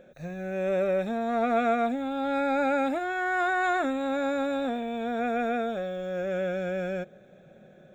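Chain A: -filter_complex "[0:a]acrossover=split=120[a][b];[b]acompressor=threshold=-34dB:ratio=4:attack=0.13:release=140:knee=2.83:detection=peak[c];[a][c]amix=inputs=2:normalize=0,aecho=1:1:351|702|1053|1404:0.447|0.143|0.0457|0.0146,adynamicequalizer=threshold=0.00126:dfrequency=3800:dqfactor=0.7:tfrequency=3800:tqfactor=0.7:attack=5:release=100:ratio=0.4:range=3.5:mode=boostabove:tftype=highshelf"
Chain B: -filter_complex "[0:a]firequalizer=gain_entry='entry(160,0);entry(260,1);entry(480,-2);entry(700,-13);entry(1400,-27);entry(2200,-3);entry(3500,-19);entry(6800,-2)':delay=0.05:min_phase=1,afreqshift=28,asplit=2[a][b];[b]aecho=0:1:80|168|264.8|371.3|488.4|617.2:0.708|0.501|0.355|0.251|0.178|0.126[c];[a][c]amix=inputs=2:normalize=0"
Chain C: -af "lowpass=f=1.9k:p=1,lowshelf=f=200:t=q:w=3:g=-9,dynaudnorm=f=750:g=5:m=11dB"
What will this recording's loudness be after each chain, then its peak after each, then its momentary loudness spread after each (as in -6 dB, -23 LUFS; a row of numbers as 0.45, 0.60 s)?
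-37.0, -29.5, -17.0 LUFS; -25.5, -15.5, -5.5 dBFS; 5, 7, 11 LU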